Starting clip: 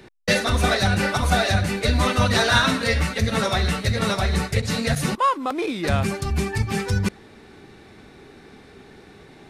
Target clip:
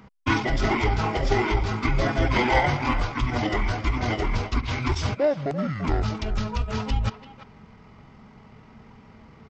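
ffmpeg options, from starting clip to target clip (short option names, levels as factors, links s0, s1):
-filter_complex "[0:a]asetrate=24046,aresample=44100,atempo=1.83401,asplit=2[s0][s1];[s1]adelay=340,highpass=300,lowpass=3400,asoftclip=type=hard:threshold=0.2,volume=0.251[s2];[s0][s2]amix=inputs=2:normalize=0,volume=0.794"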